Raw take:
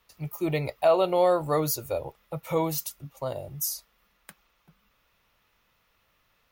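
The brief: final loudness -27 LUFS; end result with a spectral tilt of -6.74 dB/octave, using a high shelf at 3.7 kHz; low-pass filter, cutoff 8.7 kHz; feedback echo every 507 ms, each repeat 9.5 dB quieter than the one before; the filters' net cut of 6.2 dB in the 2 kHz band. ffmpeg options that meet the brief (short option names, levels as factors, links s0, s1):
-af "lowpass=8700,equalizer=f=2000:t=o:g=-5.5,highshelf=f=3700:g=-8.5,aecho=1:1:507|1014|1521|2028:0.335|0.111|0.0365|0.012,volume=1.12"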